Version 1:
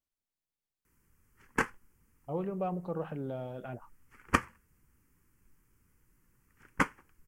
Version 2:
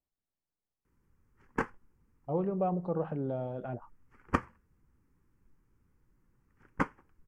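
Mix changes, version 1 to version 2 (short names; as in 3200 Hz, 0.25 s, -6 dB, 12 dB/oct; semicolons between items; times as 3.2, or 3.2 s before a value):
speech +3.5 dB; master: add EQ curve 810 Hz 0 dB, 2700 Hz -10 dB, 5100 Hz -10 dB, 9800 Hz -17 dB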